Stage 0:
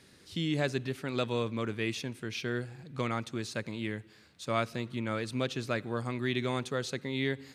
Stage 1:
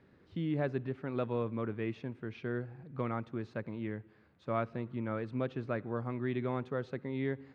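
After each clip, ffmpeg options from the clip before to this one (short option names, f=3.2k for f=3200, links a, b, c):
-af "lowpass=1.4k,volume=-2dB"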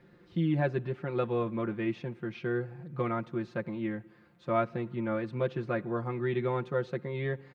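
-af "aecho=1:1:5.7:0.82,volume=2.5dB"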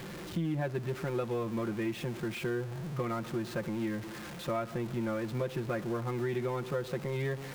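-af "aeval=exprs='val(0)+0.5*0.0126*sgn(val(0))':c=same,acompressor=threshold=-30dB:ratio=4"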